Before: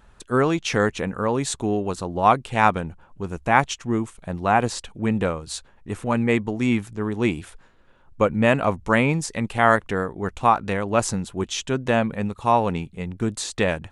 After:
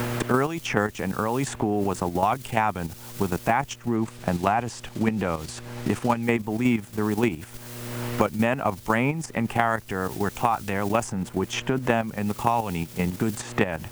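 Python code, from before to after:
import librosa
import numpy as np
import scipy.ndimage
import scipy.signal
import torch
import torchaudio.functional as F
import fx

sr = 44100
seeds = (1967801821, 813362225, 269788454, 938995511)

y = fx.graphic_eq_31(x, sr, hz=(500, 800, 4000), db=(-4, 5, -11))
y = fx.quant_dither(y, sr, seeds[0], bits=8, dither='triangular')
y = fx.dmg_buzz(y, sr, base_hz=120.0, harmonics=5, level_db=-48.0, tilt_db=-7, odd_only=False)
y = fx.level_steps(y, sr, step_db=10)
y = fx.high_shelf(y, sr, hz=8700.0, db=-12.0, at=(3.96, 6.23))
y = fx.band_squash(y, sr, depth_pct=100)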